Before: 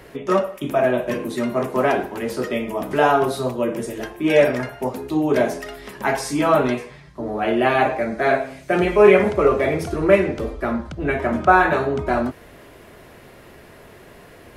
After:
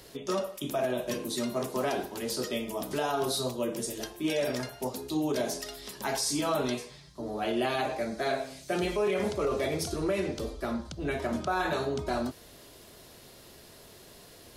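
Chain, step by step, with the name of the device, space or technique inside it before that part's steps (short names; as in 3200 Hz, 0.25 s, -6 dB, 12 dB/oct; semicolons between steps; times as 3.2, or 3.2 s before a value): over-bright horn tweeter (resonant high shelf 3000 Hz +11 dB, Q 1.5; limiter -11.5 dBFS, peak gain reduction 9.5 dB); gain -9 dB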